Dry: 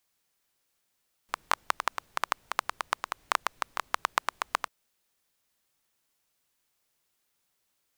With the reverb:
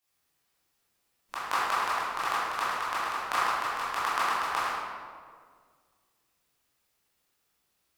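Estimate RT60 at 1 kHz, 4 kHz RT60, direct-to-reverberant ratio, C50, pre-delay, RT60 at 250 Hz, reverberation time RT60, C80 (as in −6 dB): 1.7 s, 1.1 s, −11.5 dB, −3.5 dB, 15 ms, 2.1 s, 1.9 s, −1.0 dB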